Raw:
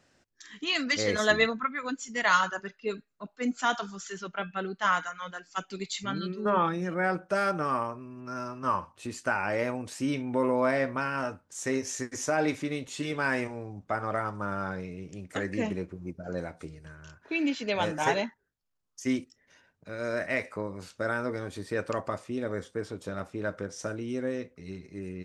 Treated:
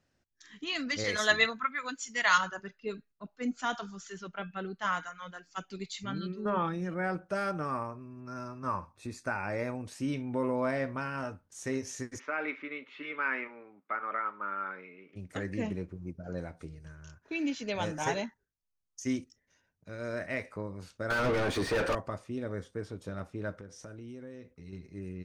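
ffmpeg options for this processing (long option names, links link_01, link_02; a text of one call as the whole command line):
ffmpeg -i in.wav -filter_complex "[0:a]asettb=1/sr,asplit=3[link_01][link_02][link_03];[link_01]atrim=end=1.044[link_04];[link_02]atrim=start=1.04:end=2.38,asetpts=PTS-STARTPTS,afade=type=in:duration=0.004:curve=qsin,afade=type=out:start_time=1.336:duration=0.004:curve=qsin,tiltshelf=frequency=640:gain=-7.5[link_05];[link_03]atrim=start=2.376[link_06];[link_04][link_05]acrossfade=duration=0.004:curve1=hsin:curve2=qsin[link_07];[link_07][link_06]acrossfade=duration=0.004:curve1=qsin:curve2=hsin,asettb=1/sr,asplit=3[link_08][link_09][link_10];[link_08]atrim=end=7.654[link_11];[link_09]atrim=start=7.65:end=9.8,asetpts=PTS-STARTPTS,afade=type=in:duration=0.004:curve=qsin,afade=type=out:start_time=2.146:duration=0.004:curve=qsin,asuperstop=centerf=3000:order=4:qfactor=5.6[link_12];[link_10]atrim=start=9.796[link_13];[link_11][link_12]acrossfade=duration=0.004:curve1=hsin:curve2=qsin[link_14];[link_14][link_13]acrossfade=duration=0.004:curve1=qsin:curve2=hsin,asplit=3[link_15][link_16][link_17];[link_15]afade=type=out:start_time=12.18:duration=0.02[link_18];[link_16]highpass=frequency=300:width=0.5412,highpass=frequency=300:width=1.3066,equalizer=frequency=330:width_type=q:width=4:gain=-6,equalizer=frequency=490:width_type=q:width=4:gain=-5,equalizer=frequency=710:width_type=q:width=4:gain=-10,equalizer=frequency=1300:width_type=q:width=4:gain=8,equalizer=frequency=2200:width_type=q:width=4:gain=8,lowpass=frequency=3100:width=0.5412,lowpass=frequency=3100:width=1.3066,afade=type=in:start_time=12.18:duration=0.02,afade=type=out:start_time=15.15:duration=0.02[link_19];[link_17]afade=type=in:start_time=15.15:duration=0.02[link_20];[link_18][link_19][link_20]amix=inputs=3:normalize=0,asettb=1/sr,asplit=3[link_21][link_22][link_23];[link_21]atrim=end=16.804[link_24];[link_22]atrim=start=16.8:end=19.97,asetpts=PTS-STARTPTS,afade=type=in:duration=0.004:curve=qsin,afade=type=out:start_time=3.166:duration=0.004:curve=qsin,equalizer=frequency=6300:width=2.3:gain=7[link_25];[link_23]atrim=start=19.966[link_26];[link_24][link_25]acrossfade=duration=0.004:curve1=hsin:curve2=qsin[link_27];[link_27][link_26]acrossfade=duration=0.004:curve1=qsin:curve2=hsin,asettb=1/sr,asplit=3[link_28][link_29][link_30];[link_28]atrim=end=21.104[link_31];[link_29]atrim=start=21.1:end=21.95,asetpts=PTS-STARTPTS,afade=type=in:duration=0.004:curve=qsin,afade=type=out:start_time=0.846:duration=0.004:curve=qsin,asplit=2[link_32][link_33];[link_33]highpass=frequency=720:poles=1,volume=35dB,asoftclip=type=tanh:threshold=-16dB[link_34];[link_32][link_34]amix=inputs=2:normalize=0,lowpass=frequency=2100:poles=1,volume=-6dB[link_35];[link_30]atrim=start=21.946[link_36];[link_31][link_35]acrossfade=duration=0.004:curve1=hsin:curve2=qsin[link_37];[link_37][link_36]acrossfade=duration=0.004:curve1=qsin:curve2=hsin,asettb=1/sr,asplit=3[link_38][link_39][link_40];[link_38]atrim=end=23.544[link_41];[link_39]atrim=start=23.54:end=24.73,asetpts=PTS-STARTPTS,afade=type=in:duration=0.004:curve=qsin,afade=type=out:start_time=1.186:duration=0.004:curve=qsin,acompressor=threshold=-42dB:ratio=2.5:attack=3.2:release=140:knee=1:detection=peak[link_42];[link_40]atrim=start=24.726[link_43];[link_41][link_42]acrossfade=duration=0.004:curve1=hsin:curve2=qsin[link_44];[link_44][link_43]acrossfade=duration=0.004:curve1=qsin:curve2=hsin,bandreject=frequency=7500:width=14,agate=range=-6dB:threshold=-54dB:ratio=16:detection=peak,lowshelf=frequency=150:gain=10,volume=-6dB" out.wav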